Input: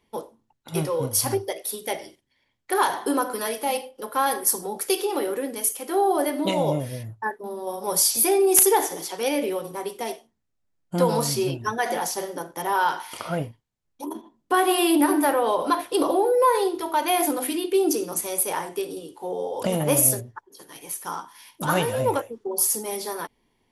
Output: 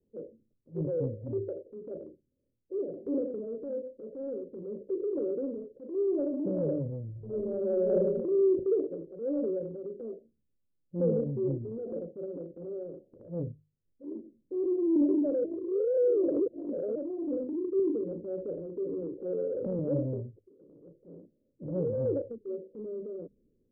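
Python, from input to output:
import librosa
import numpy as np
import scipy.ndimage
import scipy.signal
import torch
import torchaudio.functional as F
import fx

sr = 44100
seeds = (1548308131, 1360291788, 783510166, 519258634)

y = fx.reverb_throw(x, sr, start_s=7.11, length_s=0.87, rt60_s=0.84, drr_db=-11.0)
y = fx.band_squash(y, sr, depth_pct=100, at=(17.79, 19.79))
y = fx.edit(y, sr, fx.reverse_span(start_s=15.44, length_s=1.51), tone=tone)
y = scipy.signal.sosfilt(scipy.signal.butter(16, 570.0, 'lowpass', fs=sr, output='sos'), y)
y = fx.hum_notches(y, sr, base_hz=50, count=4)
y = fx.transient(y, sr, attack_db=-7, sustain_db=4)
y = F.gain(torch.from_numpy(y), -4.0).numpy()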